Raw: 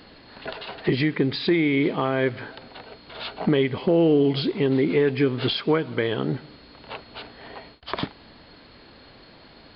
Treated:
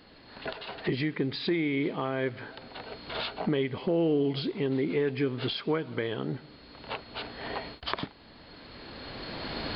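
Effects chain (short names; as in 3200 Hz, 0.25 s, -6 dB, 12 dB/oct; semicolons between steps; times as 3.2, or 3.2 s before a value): recorder AGC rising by 14 dB/s; gain -7.5 dB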